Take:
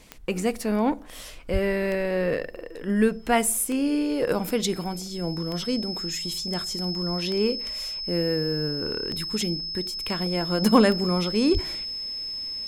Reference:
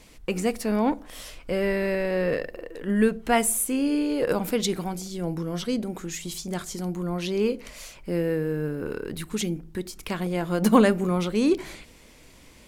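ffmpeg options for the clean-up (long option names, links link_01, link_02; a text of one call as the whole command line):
ffmpeg -i in.wav -filter_complex "[0:a]adeclick=threshold=4,bandreject=frequency=5200:width=30,asplit=3[link_01][link_02][link_03];[link_01]afade=type=out:start_time=1.52:duration=0.02[link_04];[link_02]highpass=frequency=140:width=0.5412,highpass=frequency=140:width=1.3066,afade=type=in:start_time=1.52:duration=0.02,afade=type=out:start_time=1.64:duration=0.02[link_05];[link_03]afade=type=in:start_time=1.64:duration=0.02[link_06];[link_04][link_05][link_06]amix=inputs=3:normalize=0,asplit=3[link_07][link_08][link_09];[link_07]afade=type=out:start_time=11.53:duration=0.02[link_10];[link_08]highpass=frequency=140:width=0.5412,highpass=frequency=140:width=1.3066,afade=type=in:start_time=11.53:duration=0.02,afade=type=out:start_time=11.65:duration=0.02[link_11];[link_09]afade=type=in:start_time=11.65:duration=0.02[link_12];[link_10][link_11][link_12]amix=inputs=3:normalize=0" out.wav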